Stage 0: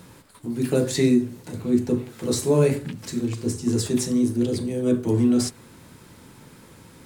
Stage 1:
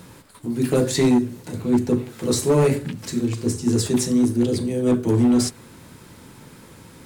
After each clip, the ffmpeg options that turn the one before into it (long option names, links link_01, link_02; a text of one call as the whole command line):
ffmpeg -i in.wav -af "asoftclip=type=hard:threshold=-15dB,volume=3dB" out.wav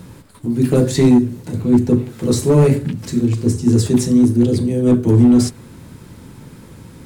ffmpeg -i in.wav -af "lowshelf=frequency=320:gain=10" out.wav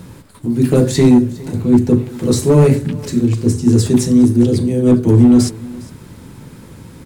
ffmpeg -i in.wav -af "aecho=1:1:408:0.0891,volume=2dB" out.wav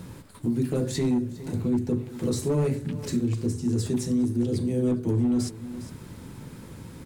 ffmpeg -i in.wav -af "alimiter=limit=-12dB:level=0:latency=1:release=496,volume=-5.5dB" out.wav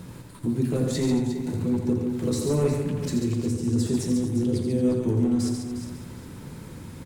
ffmpeg -i in.wav -af "aecho=1:1:83|141|226|356:0.447|0.501|0.211|0.299" out.wav